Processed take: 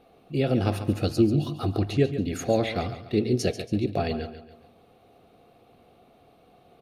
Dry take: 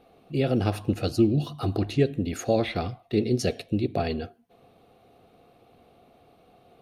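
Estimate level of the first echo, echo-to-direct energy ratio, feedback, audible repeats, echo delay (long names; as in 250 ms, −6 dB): −11.5 dB, −11.0 dB, 40%, 3, 140 ms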